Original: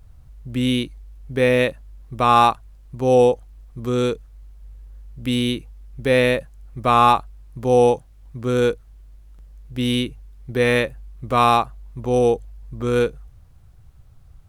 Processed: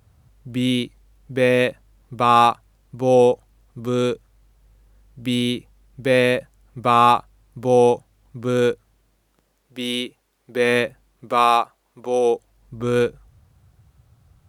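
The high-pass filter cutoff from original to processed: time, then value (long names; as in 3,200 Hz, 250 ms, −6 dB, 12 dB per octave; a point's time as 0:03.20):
0:08.70 110 Hz
0:09.76 340 Hz
0:10.51 340 Hz
0:10.82 130 Hz
0:11.49 360 Hz
0:12.23 360 Hz
0:12.80 88 Hz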